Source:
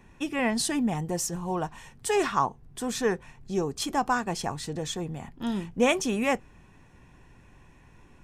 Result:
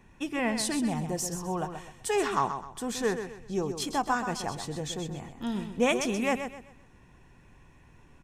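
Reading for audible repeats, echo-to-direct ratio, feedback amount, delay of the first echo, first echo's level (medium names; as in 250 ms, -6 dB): 3, -8.0 dB, 32%, 128 ms, -8.5 dB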